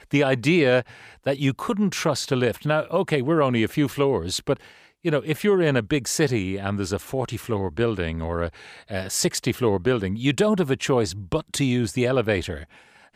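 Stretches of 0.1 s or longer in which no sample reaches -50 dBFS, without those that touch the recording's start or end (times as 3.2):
4.9–5.04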